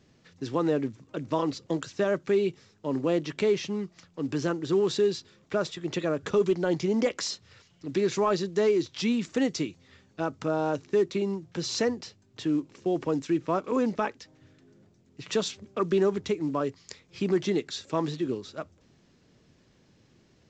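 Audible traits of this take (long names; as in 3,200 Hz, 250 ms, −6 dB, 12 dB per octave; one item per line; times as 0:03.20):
mu-law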